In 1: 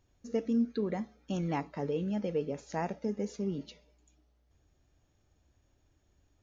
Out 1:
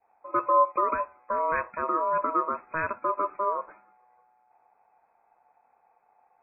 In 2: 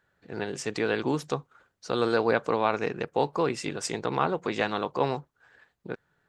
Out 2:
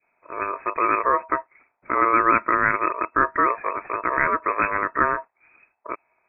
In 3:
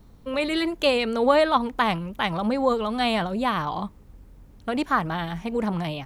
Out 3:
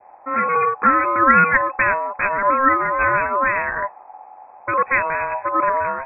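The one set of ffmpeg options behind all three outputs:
-af "aeval=exprs='val(0)*sin(2*PI*1800*n/s)':c=same,lowpass=f=2.2k:t=q:w=0.5098,lowpass=f=2.2k:t=q:w=0.6013,lowpass=f=2.2k:t=q:w=0.9,lowpass=f=2.2k:t=q:w=2.563,afreqshift=-2600,adynamicequalizer=threshold=0.0112:dfrequency=1100:dqfactor=1.4:tfrequency=1100:tqfactor=1.4:attack=5:release=100:ratio=0.375:range=2.5:mode=boostabove:tftype=bell,volume=7.5dB"

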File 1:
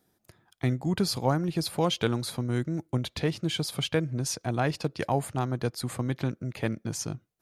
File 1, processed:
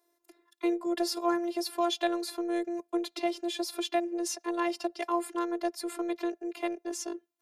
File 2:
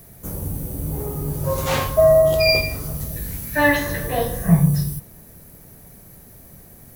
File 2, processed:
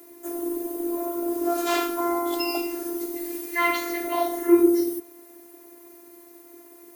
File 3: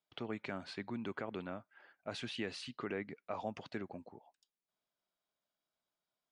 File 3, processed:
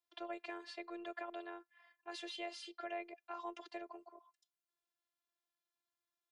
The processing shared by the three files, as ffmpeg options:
-af "afreqshift=220,asubboost=boost=7:cutoff=53,afftfilt=real='hypot(re,im)*cos(PI*b)':imag='0':win_size=512:overlap=0.75"

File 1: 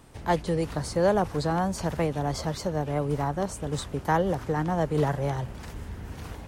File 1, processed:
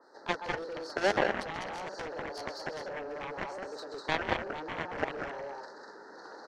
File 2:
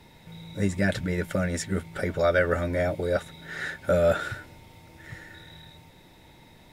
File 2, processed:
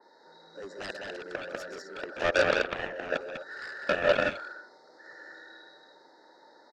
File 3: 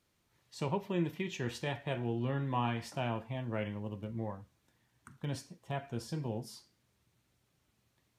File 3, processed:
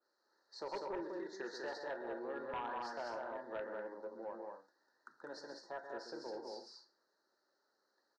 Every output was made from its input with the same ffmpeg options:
-filter_complex "[0:a]asplit=2[a][b];[b]acompressor=threshold=-37dB:ratio=6,volume=1dB[c];[a][c]amix=inputs=2:normalize=0,asuperstop=centerf=2700:order=12:qfactor=1.2,highpass=f=430:w=0.5412,highpass=f=430:w=1.3066,equalizer=f=460:t=q:w=4:g=-4,equalizer=f=700:t=q:w=4:g=-8,equalizer=f=1.1k:t=q:w=4:g=-8,equalizer=f=1.7k:t=q:w=4:g=-4,equalizer=f=2.4k:t=q:w=4:g=7,equalizer=f=3.6k:t=q:w=4:g=-4,lowpass=f=4.3k:w=0.5412,lowpass=f=4.3k:w=1.3066,asplit=2[d][e];[e]aecho=0:1:131.2|198.3|253.6:0.398|0.708|0.282[f];[d][f]amix=inputs=2:normalize=0,aeval=exprs='0.237*(cos(1*acos(clip(val(0)/0.237,-1,1)))-cos(1*PI/2))+0.0596*(cos(7*acos(clip(val(0)/0.237,-1,1)))-cos(7*PI/2))':c=same,adynamicequalizer=threshold=0.00708:dfrequency=2900:dqfactor=0.7:tfrequency=2900:tqfactor=0.7:attack=5:release=100:ratio=0.375:range=2:mode=cutabove:tftype=highshelf"

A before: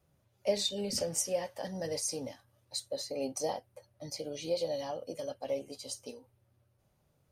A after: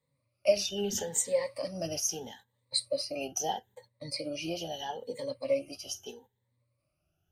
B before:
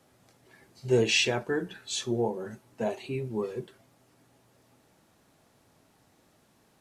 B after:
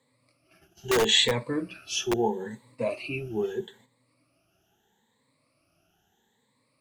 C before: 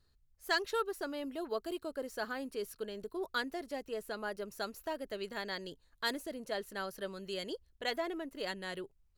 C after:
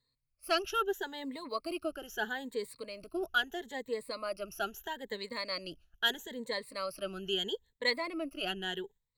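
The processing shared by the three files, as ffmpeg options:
-filter_complex "[0:a]afftfilt=real='re*pow(10,19/40*sin(2*PI*(0.99*log(max(b,1)*sr/1024/100)/log(2)-(0.77)*(pts-256)/sr)))':imag='im*pow(10,19/40*sin(2*PI*(0.99*log(max(b,1)*sr/1024/100)/log(2)-(0.77)*(pts-256)/sr)))':win_size=1024:overlap=0.75,agate=range=-9dB:threshold=-54dB:ratio=16:detection=peak,acrossover=split=400[a][b];[a]aeval=exprs='(mod(9.44*val(0)+1,2)-1)/9.44':c=same[c];[b]equalizer=f=2.9k:w=1.6:g=6[d];[c][d]amix=inputs=2:normalize=0,volume=-2dB"

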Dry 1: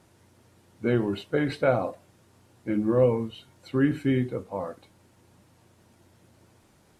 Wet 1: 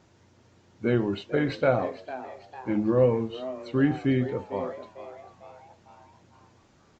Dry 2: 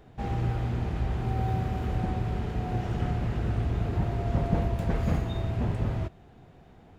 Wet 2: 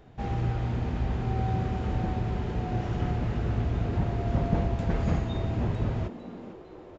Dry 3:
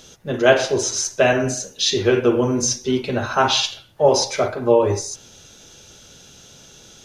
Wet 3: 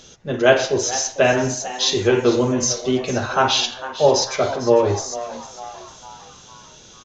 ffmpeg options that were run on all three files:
-filter_complex "[0:a]asplit=6[a][b][c][d][e][f];[b]adelay=451,afreqshift=130,volume=-14.5dB[g];[c]adelay=902,afreqshift=260,volume=-20.5dB[h];[d]adelay=1353,afreqshift=390,volume=-26.5dB[i];[e]adelay=1804,afreqshift=520,volume=-32.6dB[j];[f]adelay=2255,afreqshift=650,volume=-38.6dB[k];[a][g][h][i][j][k]amix=inputs=6:normalize=0,aresample=16000,aresample=44100"

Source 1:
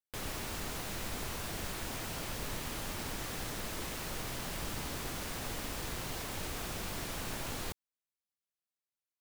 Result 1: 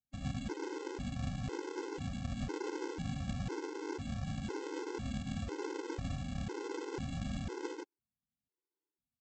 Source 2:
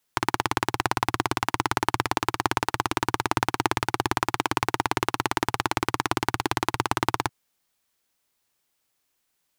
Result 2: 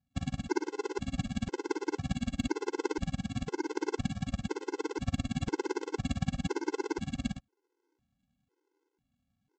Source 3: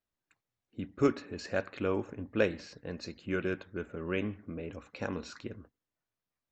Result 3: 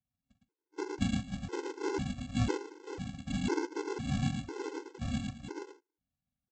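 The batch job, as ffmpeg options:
-af "acompressor=threshold=-27dB:ratio=12,afftfilt=real='hypot(re,im)*cos(2*PI*random(0))':imag='hypot(re,im)*sin(2*PI*random(1))':win_size=512:overlap=0.75,aresample=11025,aresample=44100,aecho=1:1:43.73|110.8:0.355|0.794,aresample=16000,acrusher=samples=26:mix=1:aa=0.000001,aresample=44100,highpass=42,asoftclip=type=hard:threshold=-21.5dB,equalizer=f=400:w=2.1:g=5,afftfilt=real='re*gt(sin(2*PI*1*pts/sr)*(1-2*mod(floor(b*sr/1024/270),2)),0)':imag='im*gt(sin(2*PI*1*pts/sr)*(1-2*mod(floor(b*sr/1024/270),2)),0)':win_size=1024:overlap=0.75,volume=8dB"

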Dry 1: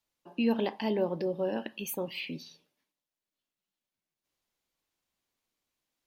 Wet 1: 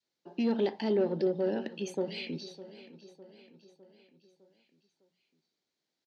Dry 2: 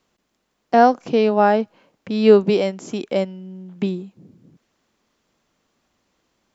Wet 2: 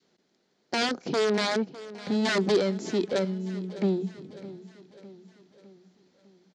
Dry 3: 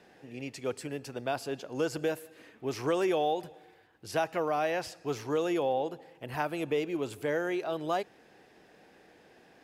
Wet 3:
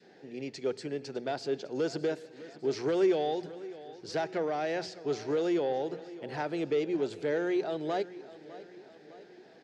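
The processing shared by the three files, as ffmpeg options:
-filter_complex "[0:a]aeval=exprs='(mod(3.16*val(0)+1,2)-1)/3.16':c=same,adynamicequalizer=threshold=0.0251:dfrequency=700:dqfactor=0.94:tfrequency=700:tqfactor=0.94:attack=5:release=100:ratio=0.375:range=2.5:mode=cutabove:tftype=bell,asoftclip=type=tanh:threshold=-23.5dB,highpass=130,equalizer=f=180:t=q:w=4:g=5,equalizer=f=390:t=q:w=4:g=7,equalizer=f=1.1k:t=q:w=4:g=-8,equalizer=f=2.7k:t=q:w=4:g=-5,equalizer=f=4.3k:t=q:w=4:g=5,lowpass=f=6.6k:w=0.5412,lowpass=f=6.6k:w=1.3066,bandreject=f=60:t=h:w=6,bandreject=f=120:t=h:w=6,bandreject=f=180:t=h:w=6,asplit=2[a][b];[b]aecho=0:1:606|1212|1818|2424|3030:0.141|0.0749|0.0397|0.021|0.0111[c];[a][c]amix=inputs=2:normalize=0"

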